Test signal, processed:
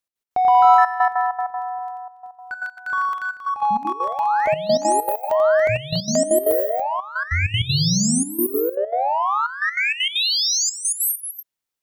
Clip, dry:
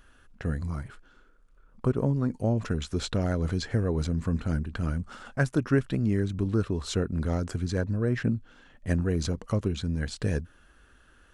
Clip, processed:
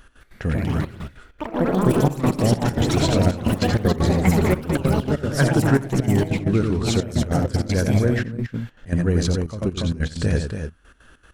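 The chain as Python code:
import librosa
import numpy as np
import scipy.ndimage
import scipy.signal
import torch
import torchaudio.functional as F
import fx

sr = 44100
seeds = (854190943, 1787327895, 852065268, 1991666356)

p1 = 10.0 ** (-28.5 / 20.0) * np.tanh(x / 10.0 ** (-28.5 / 20.0))
p2 = x + (p1 * 10.0 ** (-6.0 / 20.0))
p3 = fx.echo_multitap(p2, sr, ms=(88, 283, 308), db=(-6.5, -7.5, -19.0))
p4 = fx.echo_pitch(p3, sr, ms=210, semitones=5, count=3, db_per_echo=-3.0)
p5 = fx.step_gate(p4, sr, bpm=195, pattern='x.x.xxxxxxx..x.x', floor_db=-12.0, edge_ms=4.5)
y = p5 * 10.0 ** (4.0 / 20.0)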